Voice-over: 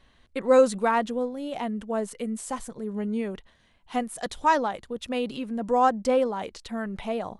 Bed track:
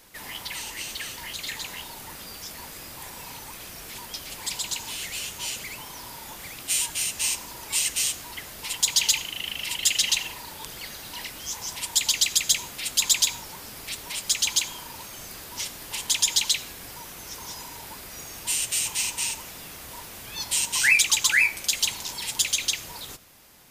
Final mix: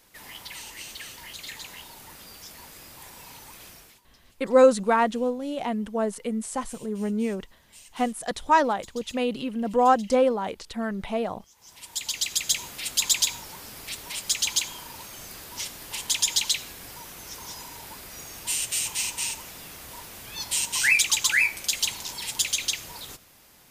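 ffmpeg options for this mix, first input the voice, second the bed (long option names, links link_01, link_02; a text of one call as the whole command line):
ffmpeg -i stem1.wav -i stem2.wav -filter_complex "[0:a]adelay=4050,volume=2dB[link_01];[1:a]volume=18.5dB,afade=type=out:start_time=3.68:duration=0.33:silence=0.1,afade=type=in:start_time=11.55:duration=1.12:silence=0.0630957[link_02];[link_01][link_02]amix=inputs=2:normalize=0" out.wav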